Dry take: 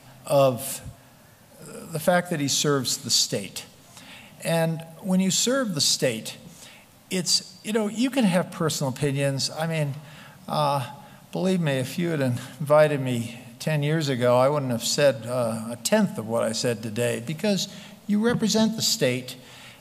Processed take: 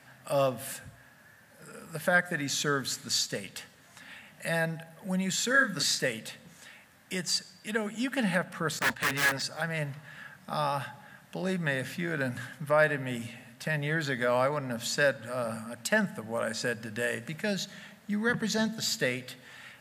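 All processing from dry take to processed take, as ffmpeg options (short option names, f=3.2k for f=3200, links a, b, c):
-filter_complex "[0:a]asettb=1/sr,asplit=3[a][b][c];[a]atrim=end=5.514[d];[b]atrim=start=5.51:end=6,asetpts=PTS-STARTPTS,afade=t=in:d=0.004:c=qsin,afade=t=out:st=0.486:d=0.004:c=qsin,highpass=130,equalizer=f=1.9k:w=3.9:g=9.5,asplit=2[e][f];[f]adelay=34,volume=-5dB[g];[e][g]amix=inputs=2:normalize=0,atrim=end_sample=21609[h];[c]atrim=start=5.996[i];[d][h]acrossfade=d=0.004:c1=hsin:c2=qsin[j];[j][i]acrossfade=d=0.004:c1=qsin:c2=hsin,asettb=1/sr,asplit=3[k][l][m];[k]atrim=end=8.794[n];[l]atrim=start=8.79:end=9.42,asetpts=PTS-STARTPTS,afade=t=in:d=0.004:c=qsin,afade=t=out:st=0.626:d=0.004:c=qsin,asplit=2[o][p];[p]highpass=f=720:p=1,volume=19dB,asoftclip=type=tanh:threshold=-11dB[q];[o][q]amix=inputs=2:normalize=0,lowpass=f=3.6k:p=1,volume=-6dB,agate=range=-33dB:threshold=-22dB:ratio=3:release=100:detection=peak,aeval=exprs='(mod(7.94*val(0)+1,2)-1)/7.94':c=same[r];[m]atrim=start=9.416[s];[n][r]acrossfade=d=0.004:c1=hsin:c2=qsin[t];[t][s]acrossfade=d=0.004:c1=qsin:c2=hsin,highpass=54,equalizer=f=1.7k:w=2.3:g=14,bandreject=f=60:t=h:w=6,bandreject=f=120:t=h:w=6,volume=-8.5dB"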